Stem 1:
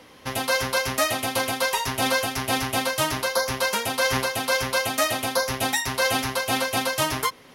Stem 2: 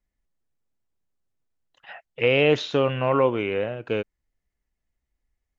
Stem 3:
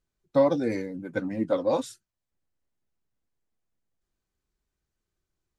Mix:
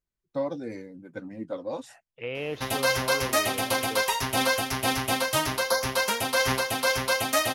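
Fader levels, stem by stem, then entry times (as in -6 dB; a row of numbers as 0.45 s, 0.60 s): -1.5 dB, -14.0 dB, -8.5 dB; 2.35 s, 0.00 s, 0.00 s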